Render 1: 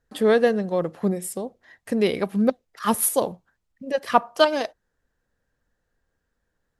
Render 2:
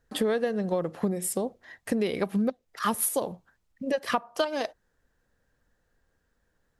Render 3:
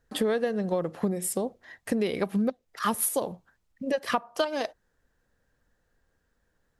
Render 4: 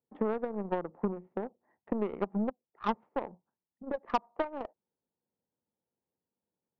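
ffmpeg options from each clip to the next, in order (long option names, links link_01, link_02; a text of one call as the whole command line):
ffmpeg -i in.wav -af "acompressor=threshold=-26dB:ratio=12,volume=3dB" out.wav
ffmpeg -i in.wav -af anull out.wav
ffmpeg -i in.wav -af "adynamicsmooth=sensitivity=2.5:basefreq=940,highpass=frequency=110:width=0.5412,highpass=frequency=110:width=1.3066,equalizer=frequency=120:width_type=q:width=4:gain=-7,equalizer=frequency=210:width_type=q:width=4:gain=3,equalizer=frequency=370:width_type=q:width=4:gain=4,equalizer=frequency=890:width_type=q:width=4:gain=8,equalizer=frequency=1600:width_type=q:width=4:gain=-8,lowpass=frequency=2000:width=0.5412,lowpass=frequency=2000:width=1.3066,aeval=exprs='0.335*(cos(1*acos(clip(val(0)/0.335,-1,1)))-cos(1*PI/2))+0.0335*(cos(3*acos(clip(val(0)/0.335,-1,1)))-cos(3*PI/2))+0.0188*(cos(7*acos(clip(val(0)/0.335,-1,1)))-cos(7*PI/2))+0.00596*(cos(8*acos(clip(val(0)/0.335,-1,1)))-cos(8*PI/2))':channel_layout=same,volume=-3.5dB" out.wav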